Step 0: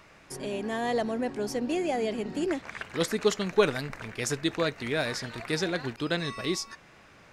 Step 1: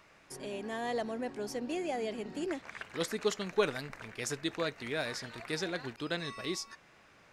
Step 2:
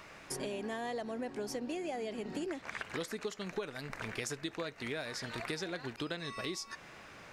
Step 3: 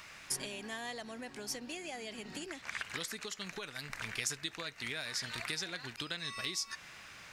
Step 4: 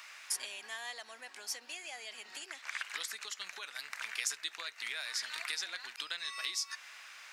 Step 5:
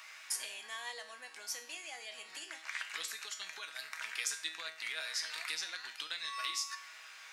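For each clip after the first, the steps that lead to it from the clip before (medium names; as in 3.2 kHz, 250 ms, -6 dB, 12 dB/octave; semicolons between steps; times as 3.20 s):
bass shelf 250 Hz -4.5 dB; trim -5.5 dB
compression 12:1, threshold -44 dBFS, peak gain reduction 22 dB; trim +8.5 dB
amplifier tone stack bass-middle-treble 5-5-5; trim +12 dB
high-pass 920 Hz 12 dB/octave; trim +1 dB
feedback comb 160 Hz, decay 0.48 s, harmonics all, mix 80%; trim +9.5 dB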